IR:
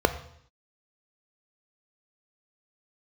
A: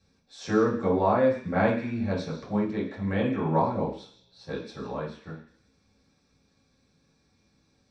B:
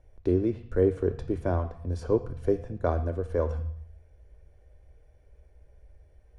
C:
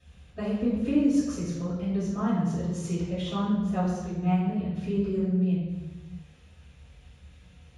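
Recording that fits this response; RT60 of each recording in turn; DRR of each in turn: B; no single decay rate, 0.65 s, no single decay rate; -7.0 dB, 9.5 dB, -13.5 dB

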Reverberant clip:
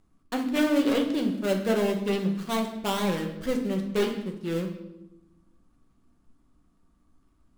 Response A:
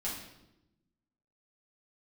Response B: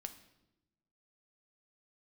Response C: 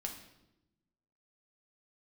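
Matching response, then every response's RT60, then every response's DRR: C; 0.90 s, 0.95 s, 0.95 s; -7.5 dB, 7.5 dB, 1.5 dB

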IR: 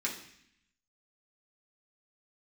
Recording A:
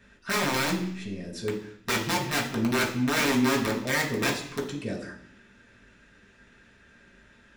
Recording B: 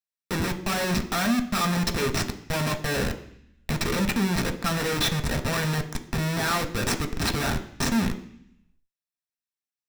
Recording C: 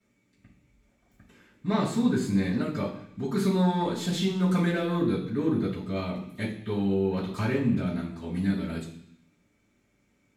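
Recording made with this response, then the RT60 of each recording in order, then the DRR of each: A; 0.65 s, 0.65 s, 0.65 s; -4.5 dB, 4.5 dB, -13.0 dB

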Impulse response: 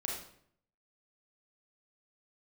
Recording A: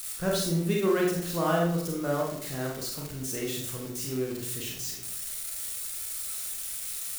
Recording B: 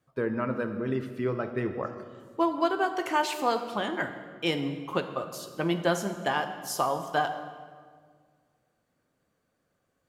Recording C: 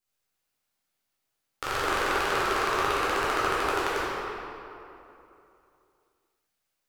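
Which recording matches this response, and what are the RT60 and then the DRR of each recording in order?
A; 0.65 s, 1.8 s, 2.9 s; -2.5 dB, 7.0 dB, -9.5 dB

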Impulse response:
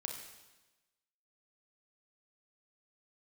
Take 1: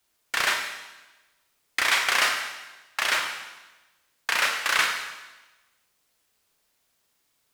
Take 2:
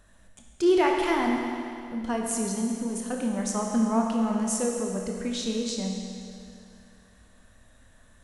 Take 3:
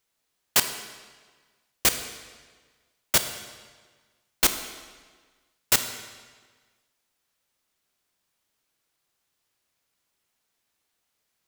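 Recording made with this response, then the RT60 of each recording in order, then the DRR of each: 1; 1.1 s, 2.5 s, 1.5 s; 2.0 dB, 0.0 dB, 8.0 dB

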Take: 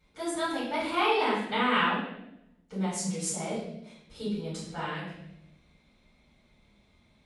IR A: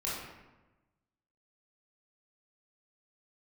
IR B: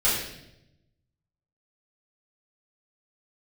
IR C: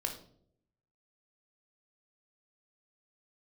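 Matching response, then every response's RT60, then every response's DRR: B; 1.1 s, 0.85 s, 0.65 s; -8.0 dB, -11.0 dB, 3.0 dB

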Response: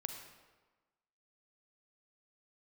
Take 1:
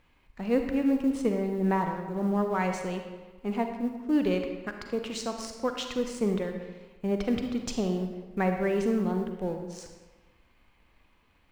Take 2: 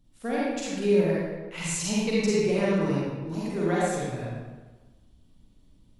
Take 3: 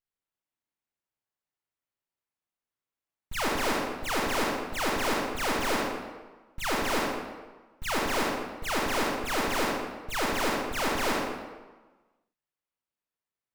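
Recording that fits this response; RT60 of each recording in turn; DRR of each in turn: 1; 1.3 s, 1.3 s, 1.3 s; 5.0 dB, -7.5 dB, -3.0 dB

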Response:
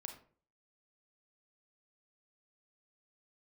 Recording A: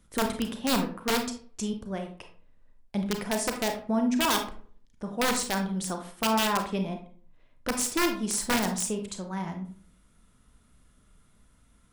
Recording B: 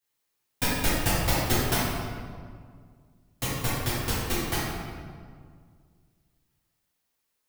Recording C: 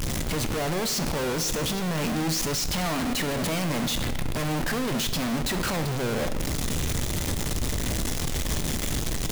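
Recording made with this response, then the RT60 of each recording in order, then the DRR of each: A; 0.45 s, 1.9 s, 1.2 s; 4.5 dB, -11.0 dB, 8.5 dB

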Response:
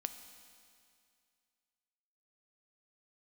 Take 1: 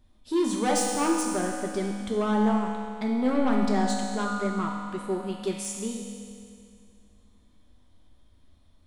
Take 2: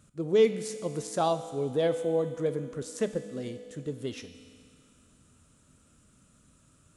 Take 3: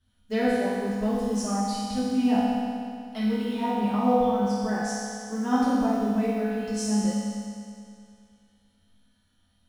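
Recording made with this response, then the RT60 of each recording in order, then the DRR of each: 2; 2.3 s, 2.3 s, 2.3 s; -1.0 dB, 8.5 dB, -10.5 dB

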